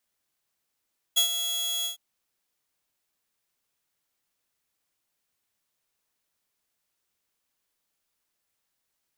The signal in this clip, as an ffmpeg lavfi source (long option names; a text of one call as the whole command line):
ffmpeg -f lavfi -i "aevalsrc='0.178*(2*mod(3340*t,1)-1)':duration=0.807:sample_rate=44100,afade=type=in:duration=0.018,afade=type=out:start_time=0.018:duration=0.099:silence=0.335,afade=type=out:start_time=0.69:duration=0.117" out.wav